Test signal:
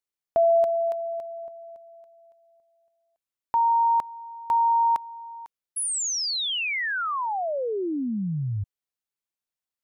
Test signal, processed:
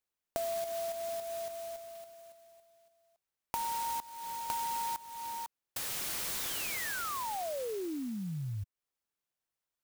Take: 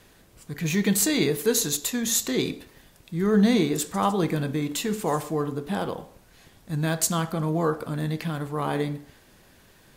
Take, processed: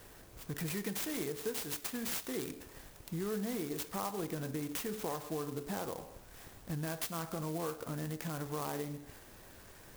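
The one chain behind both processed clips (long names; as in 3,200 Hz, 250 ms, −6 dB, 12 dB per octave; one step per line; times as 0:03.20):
parametric band 190 Hz −5.5 dB 1.1 octaves
downward compressor 5 to 1, threshold −38 dBFS
converter with an unsteady clock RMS 0.079 ms
level +1.5 dB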